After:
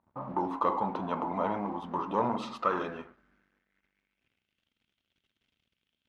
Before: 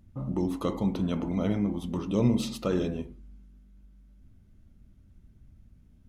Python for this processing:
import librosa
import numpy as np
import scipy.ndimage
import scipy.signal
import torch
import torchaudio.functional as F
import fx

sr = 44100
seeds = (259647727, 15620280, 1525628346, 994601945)

y = fx.leveller(x, sr, passes=2)
y = fx.filter_sweep_bandpass(y, sr, from_hz=960.0, to_hz=3100.0, start_s=2.27, end_s=4.68, q=3.3)
y = fx.high_shelf(y, sr, hz=9400.0, db=-8.0)
y = F.gain(torch.from_numpy(y), 7.5).numpy()